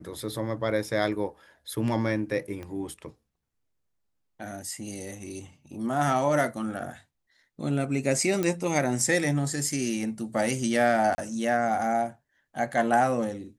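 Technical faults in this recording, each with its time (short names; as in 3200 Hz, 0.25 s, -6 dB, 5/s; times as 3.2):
2.63 pop -26 dBFS
8.43 pop -14 dBFS
11.15–11.18 gap 30 ms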